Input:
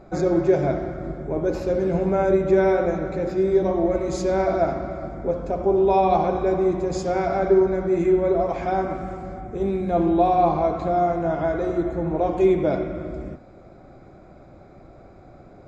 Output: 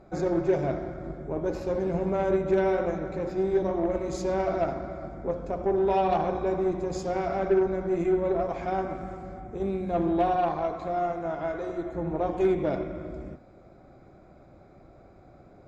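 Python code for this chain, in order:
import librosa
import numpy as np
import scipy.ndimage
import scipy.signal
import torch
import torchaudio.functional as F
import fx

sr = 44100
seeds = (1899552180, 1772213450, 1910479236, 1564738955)

y = fx.low_shelf(x, sr, hz=310.0, db=-8.0, at=(10.36, 11.95))
y = fx.cheby_harmonics(y, sr, harmonics=(6,), levels_db=(-25,), full_scale_db=-7.5)
y = y * librosa.db_to_amplitude(-6.0)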